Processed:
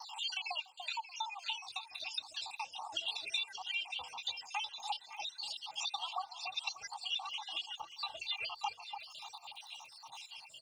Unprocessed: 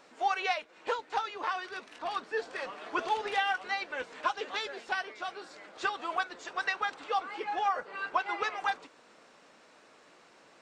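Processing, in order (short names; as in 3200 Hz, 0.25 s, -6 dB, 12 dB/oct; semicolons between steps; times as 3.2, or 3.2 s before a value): random spectral dropouts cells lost 76%; crackle 35/s -63 dBFS; EQ curve 130 Hz 0 dB, 410 Hz -30 dB, 910 Hz +12 dB, 1700 Hz -23 dB, 2800 Hz +12 dB, 7100 Hz +3 dB; compressor 3:1, threshold -51 dBFS, peak gain reduction 18 dB; HPF 64 Hz; high shelf 2700 Hz +7 dB; notches 50/100/150/200/250/300/350/400/450/500 Hz; comb 2.5 ms, depth 44%; echo with dull and thin repeats by turns 0.291 s, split 1000 Hz, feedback 50%, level -6 dB; gate with hold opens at -51 dBFS; gain +6.5 dB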